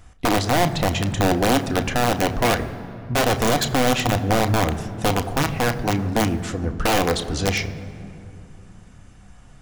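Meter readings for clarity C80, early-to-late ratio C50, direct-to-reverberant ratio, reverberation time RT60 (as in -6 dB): 13.5 dB, 13.0 dB, 7.0 dB, 2.7 s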